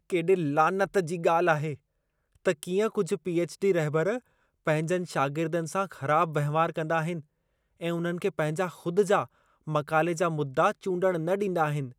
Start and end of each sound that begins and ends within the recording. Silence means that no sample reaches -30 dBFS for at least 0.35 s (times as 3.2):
2.46–4.18
4.67–7.17
7.83–9.24